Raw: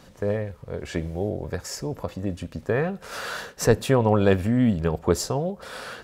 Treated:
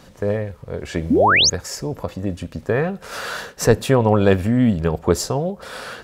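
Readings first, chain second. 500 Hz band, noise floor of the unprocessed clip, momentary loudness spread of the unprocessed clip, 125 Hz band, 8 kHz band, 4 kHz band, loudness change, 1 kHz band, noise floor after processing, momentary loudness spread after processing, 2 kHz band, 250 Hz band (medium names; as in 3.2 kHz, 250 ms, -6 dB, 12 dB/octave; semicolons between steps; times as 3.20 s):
+4.5 dB, -50 dBFS, 13 LU, +4.0 dB, +8.5 dB, +14.0 dB, +6.0 dB, +8.5 dB, -46 dBFS, 15 LU, +10.0 dB, +4.5 dB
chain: painted sound rise, 1.10–1.50 s, 210–7000 Hz -18 dBFS; trim +4 dB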